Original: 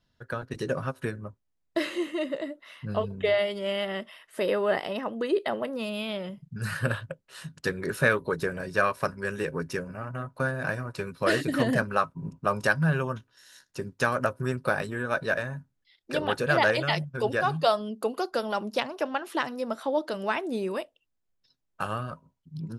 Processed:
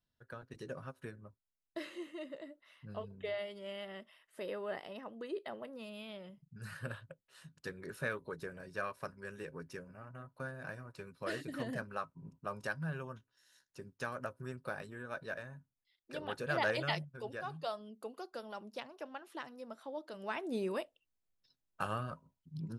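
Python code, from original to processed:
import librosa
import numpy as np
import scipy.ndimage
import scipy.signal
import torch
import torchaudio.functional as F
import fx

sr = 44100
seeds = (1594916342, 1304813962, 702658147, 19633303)

y = fx.gain(x, sr, db=fx.line((16.12, -15.0), (16.9, -8.0), (17.19, -16.5), (20.06, -16.5), (20.57, -6.0)))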